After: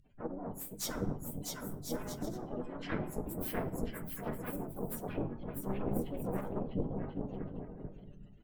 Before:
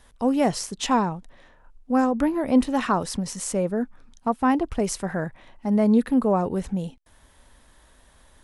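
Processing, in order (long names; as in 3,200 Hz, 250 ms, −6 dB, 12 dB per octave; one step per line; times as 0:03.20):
partials spread apart or drawn together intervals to 125%
downward compressor 2.5 to 1, threshold −41 dBFS, peak gain reduction 17.5 dB
double-tracking delay 21 ms −2.5 dB
gate on every frequency bin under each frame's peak −15 dB strong
parametric band 1,100 Hz −13 dB 1.1 octaves
tuned comb filter 200 Hz, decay 0.58 s, harmonics all, mix 50%
bouncing-ball delay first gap 650 ms, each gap 0.6×, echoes 5
harmonic generator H 2 −42 dB, 4 −6 dB, 5 −23 dB, 6 −26 dB, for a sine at −26 dBFS
rectangular room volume 170 cubic metres, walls mixed, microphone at 0.46 metres
harmonic and percussive parts rebalanced harmonic −14 dB
pitch-shifted copies added −7 semitones −5 dB, +5 semitones −13 dB
level +6 dB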